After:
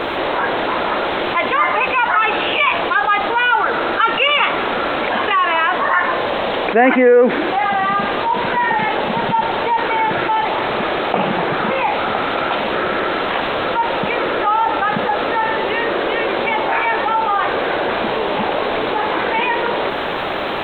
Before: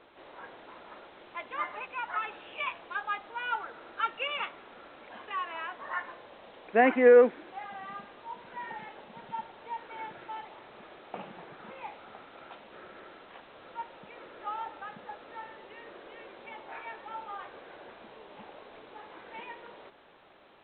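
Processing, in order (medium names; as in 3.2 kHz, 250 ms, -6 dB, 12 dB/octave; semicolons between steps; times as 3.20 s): level flattener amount 70%; trim +6 dB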